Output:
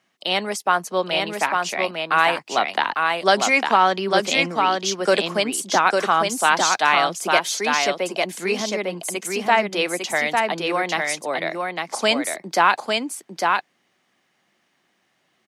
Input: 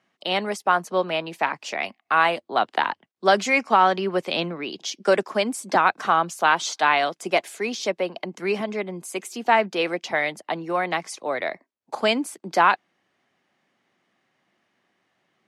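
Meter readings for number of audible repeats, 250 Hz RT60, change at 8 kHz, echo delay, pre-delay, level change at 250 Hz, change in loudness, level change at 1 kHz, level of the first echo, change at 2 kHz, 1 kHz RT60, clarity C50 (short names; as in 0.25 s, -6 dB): 1, none, +9.0 dB, 0.852 s, none, +1.5 dB, +2.5 dB, +2.0 dB, -3.5 dB, +3.5 dB, none, none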